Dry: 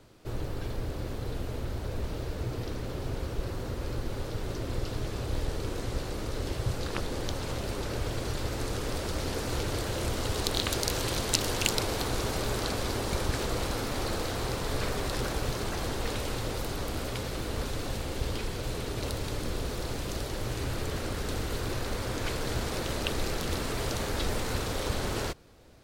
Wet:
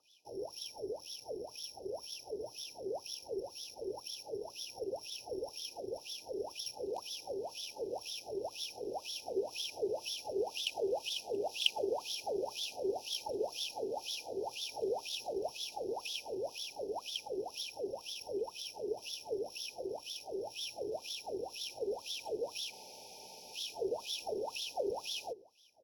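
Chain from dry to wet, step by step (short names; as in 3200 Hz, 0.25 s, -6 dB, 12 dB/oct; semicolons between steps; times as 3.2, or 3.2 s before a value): careless resampling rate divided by 8×, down filtered, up zero stuff; FFT band-reject 930–2400 Hz; on a send: feedback echo 0.11 s, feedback 42%, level -22.5 dB; on the sum: wah 2 Hz 380–3500 Hz, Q 20; spectral freeze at 22.73, 0.81 s; gain +11.5 dB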